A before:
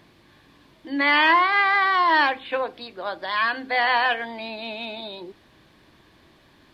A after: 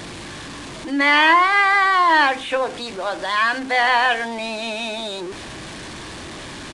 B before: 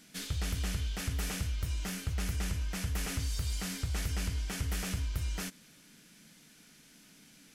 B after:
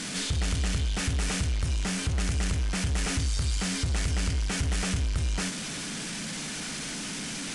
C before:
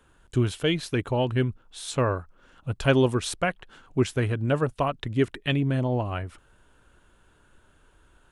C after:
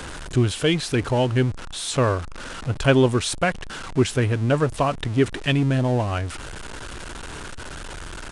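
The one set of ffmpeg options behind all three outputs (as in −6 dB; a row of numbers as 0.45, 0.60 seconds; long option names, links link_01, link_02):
-af "aeval=exprs='val(0)+0.5*0.0251*sgn(val(0))':channel_layout=same,aresample=22050,aresample=44100,volume=3dB"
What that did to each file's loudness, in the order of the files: +3.5, +6.0, +4.0 LU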